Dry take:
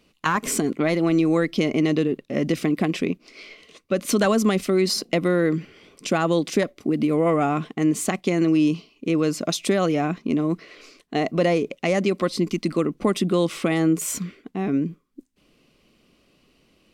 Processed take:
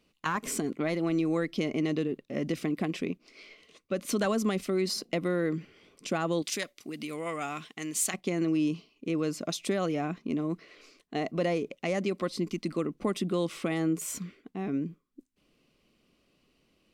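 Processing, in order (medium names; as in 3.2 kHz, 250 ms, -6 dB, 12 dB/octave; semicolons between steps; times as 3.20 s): 6.42–8.14 s: tilt shelf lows -10 dB, about 1.4 kHz; trim -8.5 dB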